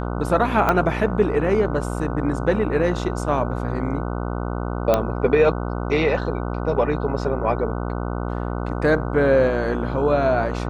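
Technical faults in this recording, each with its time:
mains buzz 60 Hz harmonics 25 −26 dBFS
0:00.69: click −6 dBFS
0:04.94: click −5 dBFS

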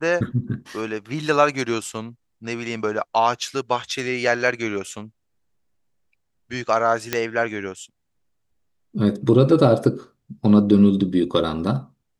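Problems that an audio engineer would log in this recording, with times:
0:07.13: click −5 dBFS

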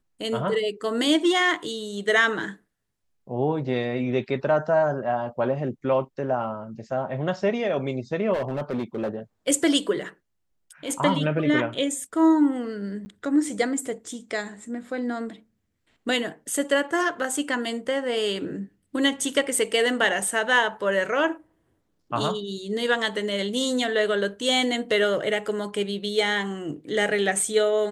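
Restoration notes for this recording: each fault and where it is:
0:08.33–0:09.16: clipping −23 dBFS
0:13.05–0:13.06: drop-out 10 ms

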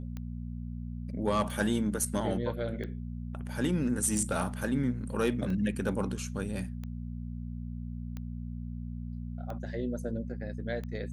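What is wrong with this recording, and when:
mains hum 60 Hz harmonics 4 −38 dBFS
scratch tick 45 rpm −27 dBFS

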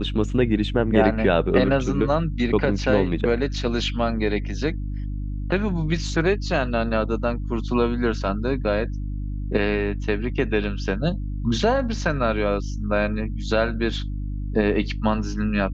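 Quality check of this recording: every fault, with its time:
mains hum 50 Hz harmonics 6 −28 dBFS

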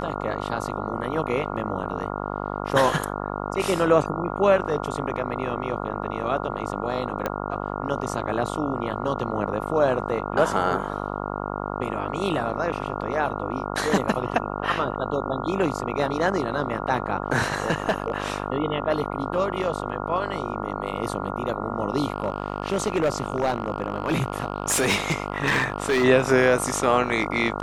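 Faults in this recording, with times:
mains buzz 50 Hz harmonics 28 −30 dBFS
0:07.26: click −12 dBFS
0:17.70–0:18.12: clipping −16.5 dBFS
0:22.12–0:26.05: clipping −17 dBFS

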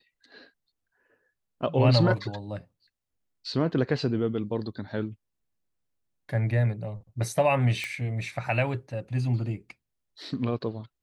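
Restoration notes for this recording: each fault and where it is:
0:07.84: click −19 dBFS

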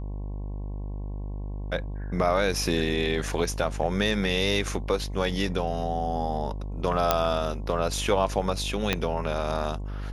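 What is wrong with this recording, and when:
mains buzz 50 Hz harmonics 22 −33 dBFS
0:07.11: click −5 dBFS
0:08.93: click −8 dBFS

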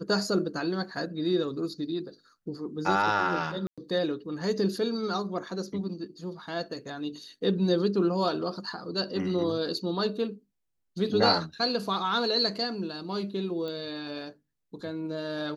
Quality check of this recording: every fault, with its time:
0:03.67–0:03.78: drop-out 106 ms
0:13.68: click −26 dBFS

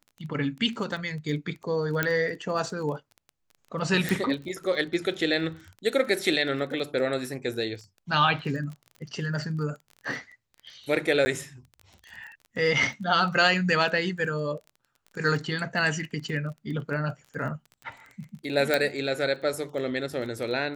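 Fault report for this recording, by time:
surface crackle 22 per second −36 dBFS
0:02.03: click −10 dBFS
0:04.09: click
0:11.25–0:11.26: drop-out 10 ms
0:18.74: click −9 dBFS

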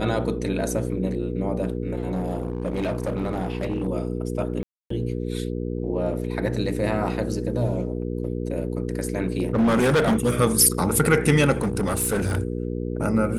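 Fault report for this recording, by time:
mains hum 60 Hz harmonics 8 −28 dBFS
0:02.10–0:03.87: clipping −21 dBFS
0:04.63–0:04.90: drop-out 274 ms
0:09.17–0:10.41: clipping −15.5 dBFS
0:11.61–0:12.38: clipping −19 dBFS

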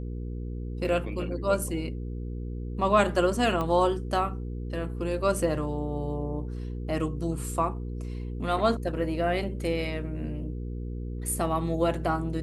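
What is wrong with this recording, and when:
mains hum 60 Hz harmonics 8 −34 dBFS
0:03.61: click −18 dBFS

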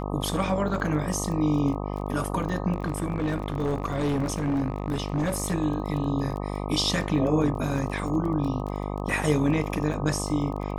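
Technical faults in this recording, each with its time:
mains buzz 50 Hz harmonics 25 −31 dBFS
surface crackle 22 per second −33 dBFS
0:02.74–0:05.53: clipping −21.5 dBFS

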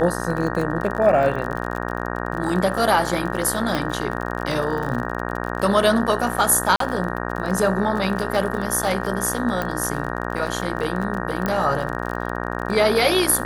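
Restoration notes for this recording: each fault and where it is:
mains buzz 60 Hz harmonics 31 −27 dBFS
surface crackle 42 per second −27 dBFS
0:03.75: click −9 dBFS
0:06.76–0:06.80: drop-out 43 ms
0:09.62: click −11 dBFS
0:11.46: click −9 dBFS

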